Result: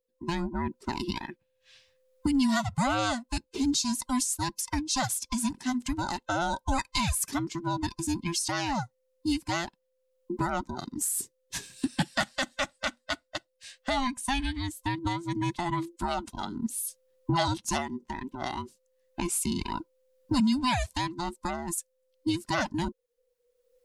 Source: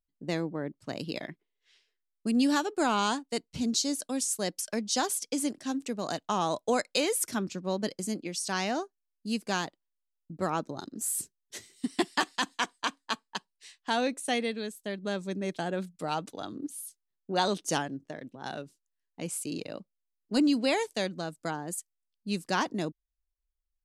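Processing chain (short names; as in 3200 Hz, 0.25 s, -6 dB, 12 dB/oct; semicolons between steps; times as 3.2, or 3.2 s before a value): band inversion scrambler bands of 500 Hz; recorder AGC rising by 14 dB/s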